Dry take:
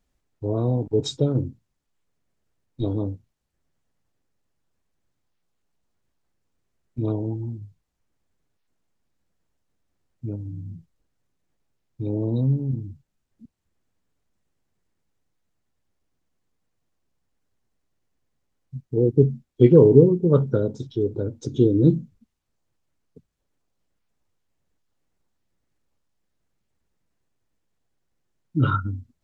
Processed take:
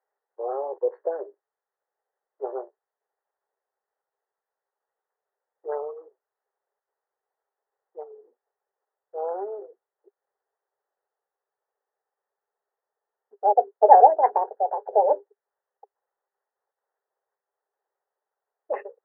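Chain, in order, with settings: speed glide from 111% -> 196%; Chebyshev band-pass 400–1900 Hz, order 5; bell 810 Hz +6.5 dB 0.25 oct; gain -1 dB

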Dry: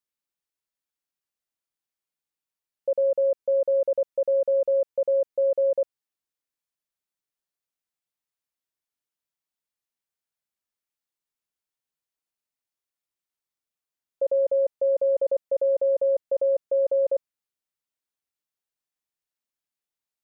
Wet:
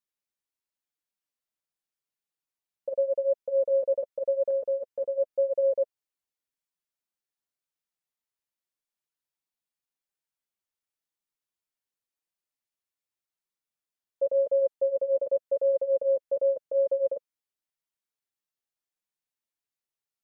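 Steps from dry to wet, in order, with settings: 4.5–5.18 dynamic EQ 580 Hz, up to -4 dB, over -32 dBFS, Q 2.8; flange 0.89 Hz, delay 4.9 ms, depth 6.2 ms, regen -6%

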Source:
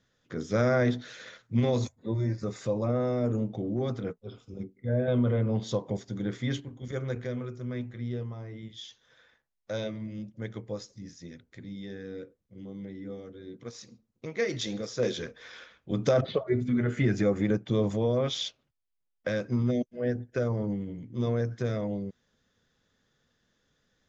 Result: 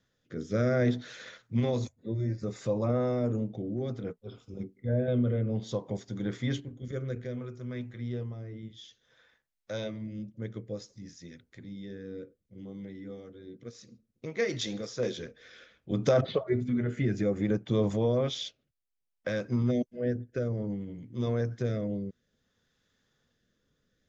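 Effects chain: rotary speaker horn 0.6 Hz

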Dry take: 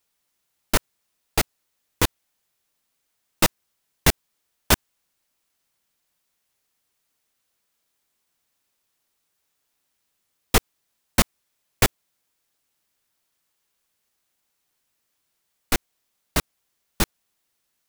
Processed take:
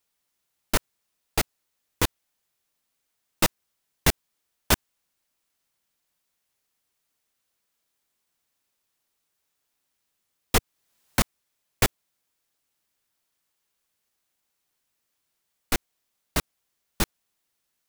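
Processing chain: 10.57–11.21 three-band squash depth 70%; gain -3 dB

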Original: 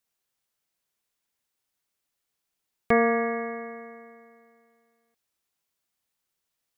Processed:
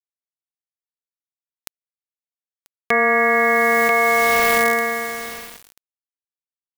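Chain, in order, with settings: HPF 100 Hz 12 dB/oct; tilt +4 dB/oct; bit-crush 9-bit; on a send: echo 0.988 s -20.5 dB; on the sum: fast leveller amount 100%; gain +3.5 dB

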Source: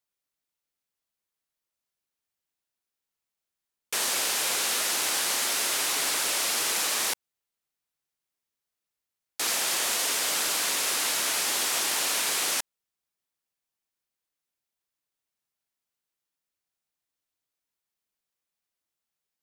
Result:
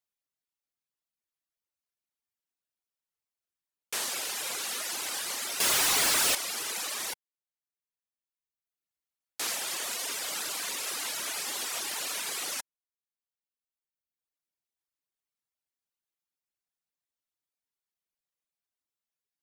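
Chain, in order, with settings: reverb removal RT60 1.5 s; 5.6–6.35 sample leveller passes 5; gain -4 dB

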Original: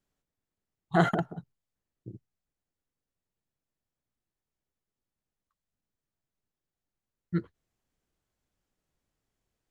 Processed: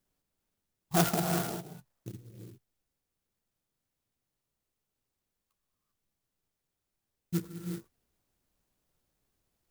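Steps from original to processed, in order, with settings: high shelf 5100 Hz +7.5 dB; in parallel at -2 dB: compressor, threshold -37 dBFS, peak gain reduction 18.5 dB; 1.38–2.12 on the sum: band shelf 1200 Hz +9 dB 2.5 oct; reverb, pre-delay 3 ms, DRR 2.5 dB; clock jitter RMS 0.12 ms; gain -4 dB

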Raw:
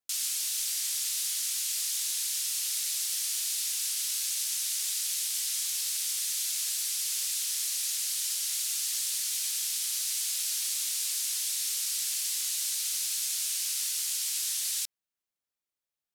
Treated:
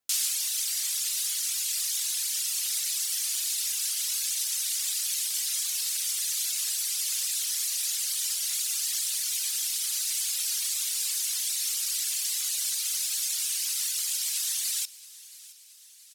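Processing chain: reverb removal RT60 1.9 s; feedback echo 0.673 s, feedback 57%, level -20 dB; gain +5.5 dB

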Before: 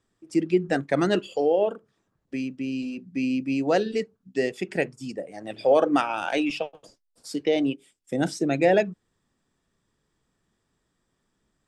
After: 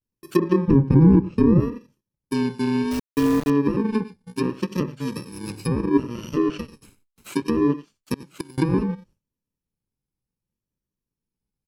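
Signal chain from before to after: FFT order left unsorted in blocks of 64 samples; 0.69–1.59 tilt -3.5 dB/oct; 8.15–8.58 flipped gate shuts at -20 dBFS, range -28 dB; limiter -14 dBFS, peak gain reduction 5 dB; echo 91 ms -18 dB; vibrato 0.67 Hz 99 cents; treble ducked by the level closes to 1200 Hz, closed at -21.5 dBFS; 2.91–3.5 requantised 6-bit, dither none; gate with hold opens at -56 dBFS; low shelf 470 Hz +9.5 dB; gain +2.5 dB

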